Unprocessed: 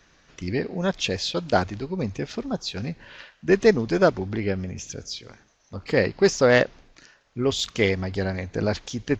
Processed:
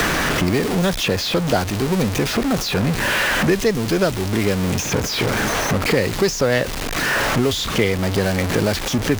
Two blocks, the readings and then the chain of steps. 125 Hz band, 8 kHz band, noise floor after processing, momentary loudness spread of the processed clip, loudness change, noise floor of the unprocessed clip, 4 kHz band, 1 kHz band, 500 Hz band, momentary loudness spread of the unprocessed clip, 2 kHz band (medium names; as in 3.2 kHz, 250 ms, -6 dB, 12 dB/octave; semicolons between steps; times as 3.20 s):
+8.0 dB, +11.0 dB, -25 dBFS, 3 LU, +5.0 dB, -61 dBFS, +8.5 dB, +7.5 dB, +2.5 dB, 16 LU, +8.0 dB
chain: jump at every zero crossing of -22 dBFS; three bands compressed up and down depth 100%; trim +1 dB